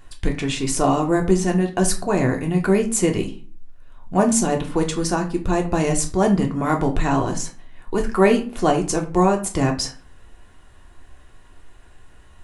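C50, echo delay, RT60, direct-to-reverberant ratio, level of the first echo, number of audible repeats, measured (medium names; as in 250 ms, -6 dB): 11.5 dB, no echo, 0.40 s, 1.5 dB, no echo, no echo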